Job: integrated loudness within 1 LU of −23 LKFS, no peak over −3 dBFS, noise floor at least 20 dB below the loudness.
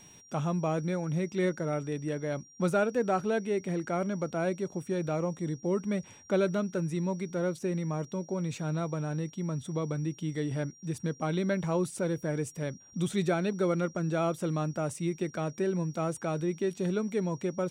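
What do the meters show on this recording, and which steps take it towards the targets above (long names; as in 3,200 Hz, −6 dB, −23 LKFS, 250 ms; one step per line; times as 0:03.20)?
interfering tone 5,700 Hz; level of the tone −54 dBFS; integrated loudness −32.0 LKFS; sample peak −15.0 dBFS; target loudness −23.0 LKFS
→ notch filter 5,700 Hz, Q 30
level +9 dB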